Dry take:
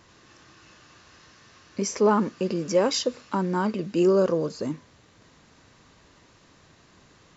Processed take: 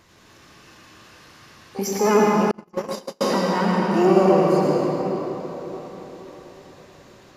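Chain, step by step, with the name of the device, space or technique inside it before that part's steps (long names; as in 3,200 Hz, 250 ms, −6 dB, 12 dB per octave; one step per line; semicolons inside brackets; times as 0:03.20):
shimmer-style reverb (pitch-shifted copies added +12 semitones −9 dB; convolution reverb RT60 4.5 s, pre-delay 76 ms, DRR −4 dB)
0:02.51–0:03.21: noise gate −14 dBFS, range −44 dB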